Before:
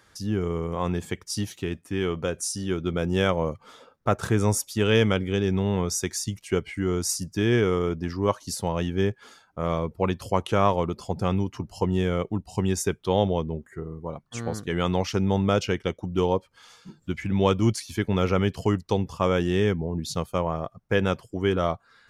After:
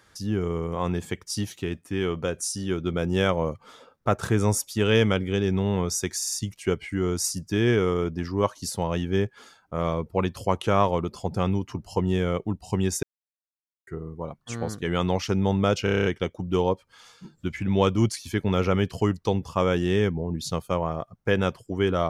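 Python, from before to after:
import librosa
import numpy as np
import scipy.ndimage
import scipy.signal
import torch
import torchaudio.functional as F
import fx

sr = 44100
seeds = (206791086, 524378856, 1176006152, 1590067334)

y = fx.edit(x, sr, fx.stutter(start_s=6.17, slice_s=0.05, count=4),
    fx.silence(start_s=12.88, length_s=0.84),
    fx.stutter(start_s=15.69, slice_s=0.03, count=8), tone=tone)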